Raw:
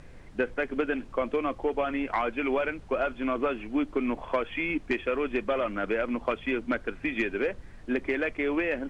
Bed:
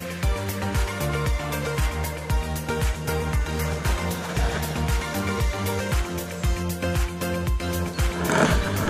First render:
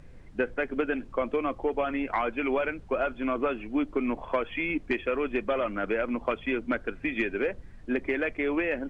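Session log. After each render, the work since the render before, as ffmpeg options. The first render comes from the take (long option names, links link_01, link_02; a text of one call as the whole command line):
ffmpeg -i in.wav -af "afftdn=noise_reduction=6:noise_floor=-47" out.wav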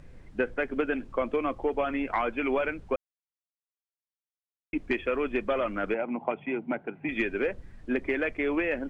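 ffmpeg -i in.wav -filter_complex "[0:a]asettb=1/sr,asplit=3[link_01][link_02][link_03];[link_01]atrim=end=5.944[link_04];[link_02]atrim=start=5.94:end=7.09,asetpts=PTS-STARTPTS,afade=type=in:duration=0.004:curve=qsin,afade=type=out:start_time=1.146:duration=0.004:curve=qsin,highpass=frequency=140:width=0.5412,highpass=frequency=140:width=1.3066,equalizer=frequency=150:width_type=q:width=4:gain=9,equalizer=frequency=260:width_type=q:width=4:gain=-3,equalizer=frequency=500:width_type=q:width=4:gain=-6,equalizer=frequency=800:width_type=q:width=4:gain=10,equalizer=frequency=1200:width_type=q:width=4:gain=-8,equalizer=frequency=1700:width_type=q:width=4:gain=-9,lowpass=frequency=2400:width=0.5412,lowpass=frequency=2400:width=1.3066[link_05];[link_03]atrim=start=7.086[link_06];[link_04][link_05]acrossfade=duration=0.004:curve1=hsin:curve2=qsin[link_07];[link_07][link_06]acrossfade=duration=0.004:curve1=qsin:curve2=hsin,asplit=3[link_08][link_09][link_10];[link_08]atrim=end=2.96,asetpts=PTS-STARTPTS,afade=type=out:start_time=2.956:duration=0.004:curve=hsin[link_11];[link_09]atrim=start=2.96:end=4.73,asetpts=PTS-STARTPTS,volume=0[link_12];[link_10]atrim=start=4.73,asetpts=PTS-STARTPTS,afade=type=in:duration=0.004:curve=hsin[link_13];[link_11][link_12][link_13]concat=n=3:v=0:a=1" out.wav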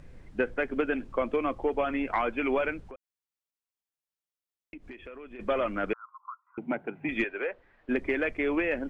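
ffmpeg -i in.wav -filter_complex "[0:a]asplit=3[link_01][link_02][link_03];[link_01]afade=type=out:start_time=2.81:duration=0.02[link_04];[link_02]acompressor=threshold=-43dB:ratio=5:attack=3.2:release=140:knee=1:detection=peak,afade=type=in:start_time=2.81:duration=0.02,afade=type=out:start_time=5.39:duration=0.02[link_05];[link_03]afade=type=in:start_time=5.39:duration=0.02[link_06];[link_04][link_05][link_06]amix=inputs=3:normalize=0,asettb=1/sr,asplit=3[link_07][link_08][link_09];[link_07]atrim=end=5.934[link_10];[link_08]atrim=start=5.93:end=6.58,asetpts=PTS-STARTPTS,afade=type=in:duration=0.004:curve=qsin,afade=type=out:start_time=0.646:duration=0.004:curve=qsin,asuperpass=centerf=1200:order=8:qfactor=3.4[link_11];[link_09]atrim=start=6.576[link_12];[link_10][link_11]acrossfade=duration=0.004:curve1=hsin:curve2=qsin[link_13];[link_13][link_12]acrossfade=duration=0.004:curve1=qsin:curve2=hsin,asettb=1/sr,asplit=3[link_14][link_15][link_16];[link_14]atrim=end=7.244[link_17];[link_15]atrim=start=7.24:end=7.89,asetpts=PTS-STARTPTS,afade=type=in:duration=0.004:curve=qsin,afade=type=out:start_time=0.646:duration=0.004:curve=qsin,acrossover=split=420 3400:gain=0.0794 1 0.0708[link_18][link_19][link_20];[link_18][link_19][link_20]amix=inputs=3:normalize=0[link_21];[link_16]atrim=start=7.886[link_22];[link_17][link_21]acrossfade=duration=0.004:curve1=hsin:curve2=qsin[link_23];[link_23][link_22]acrossfade=duration=0.004:curve1=qsin:curve2=hsin" out.wav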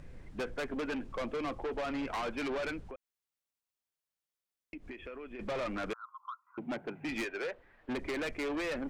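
ffmpeg -i in.wav -af "asoftclip=type=tanh:threshold=-32.5dB" out.wav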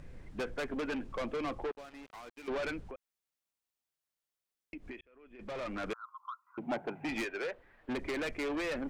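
ffmpeg -i in.wav -filter_complex "[0:a]asettb=1/sr,asplit=3[link_01][link_02][link_03];[link_01]atrim=end=1.714[link_04];[link_02]atrim=start=1.71:end=2.48,asetpts=PTS-STARTPTS,afade=type=in:duration=0.004:curve=qsin,afade=type=out:start_time=0.766:duration=0.004:curve=qsin,acrusher=bits=4:mix=0:aa=0.5[link_05];[link_03]atrim=start=2.476[link_06];[link_04][link_05]acrossfade=duration=0.004:curve1=hsin:curve2=qsin[link_07];[link_07][link_06]acrossfade=duration=0.004:curve1=qsin:curve2=hsin,asettb=1/sr,asplit=3[link_08][link_09][link_10];[link_08]atrim=end=6.634[link_11];[link_09]atrim=start=6.63:end=7.19,asetpts=PTS-STARTPTS,afade=type=in:duration=0.004:curve=qsin,afade=type=out:start_time=0.556:duration=0.004:curve=qsin,equalizer=frequency=790:width_type=o:width=0.86:gain=8[link_12];[link_10]atrim=start=7.186[link_13];[link_11][link_12]acrossfade=duration=0.004:curve1=hsin:curve2=qsin[link_14];[link_14][link_13]acrossfade=duration=0.004:curve1=qsin:curve2=hsin,asplit=2[link_15][link_16];[link_15]atrim=end=5.01,asetpts=PTS-STARTPTS,afade=type=out:start_time=5.006:duration=0.004:curve=hsin[link_17];[link_16]atrim=start=5.01,asetpts=PTS-STARTPTS,afade=type=in:duration=0.92[link_18];[link_17][link_18]concat=n=2:v=0:a=1" out.wav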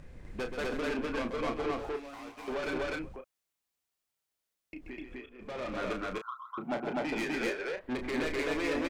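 ffmpeg -i in.wav -filter_complex "[0:a]asplit=2[link_01][link_02];[link_02]adelay=32,volume=-7dB[link_03];[link_01][link_03]amix=inputs=2:normalize=0,aecho=1:1:131.2|250.7:0.398|1" out.wav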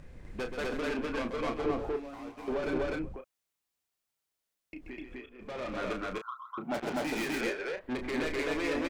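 ffmpeg -i in.wav -filter_complex "[0:a]asettb=1/sr,asplit=3[link_01][link_02][link_03];[link_01]atrim=end=1.644[link_04];[link_02]atrim=start=1.64:end=3.17,asetpts=PTS-STARTPTS,afade=type=in:duration=0.004:curve=qsin,afade=type=out:start_time=1.526:duration=0.004:curve=qsin,tiltshelf=frequency=890:gain=5[link_05];[link_03]atrim=start=3.166[link_06];[link_04][link_05]acrossfade=duration=0.004:curve1=hsin:curve2=qsin[link_07];[link_07][link_06]acrossfade=duration=0.004:curve1=qsin:curve2=hsin,asettb=1/sr,asplit=3[link_08][link_09][link_10];[link_08]atrim=end=6.744[link_11];[link_09]atrim=start=6.74:end=7.41,asetpts=PTS-STARTPTS,afade=type=in:duration=0.004:curve=qsin,afade=type=out:start_time=0.666:duration=0.004:curve=qsin,acrusher=bits=5:mix=0:aa=0.5[link_12];[link_10]atrim=start=7.406[link_13];[link_11][link_12]acrossfade=duration=0.004:curve1=hsin:curve2=qsin[link_14];[link_14][link_13]acrossfade=duration=0.004:curve1=qsin:curve2=hsin" out.wav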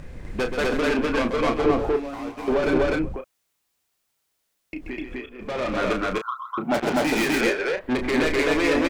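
ffmpeg -i in.wav -af "volume=11dB" out.wav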